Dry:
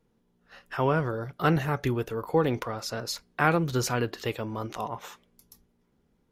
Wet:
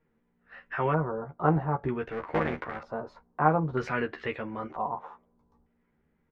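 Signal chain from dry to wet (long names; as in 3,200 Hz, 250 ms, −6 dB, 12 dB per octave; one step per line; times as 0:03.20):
0:02.11–0:02.80: sub-harmonics by changed cycles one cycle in 3, muted
double-tracking delay 13 ms −4 dB
auto-filter low-pass square 0.53 Hz 950–2,000 Hz
level −4.5 dB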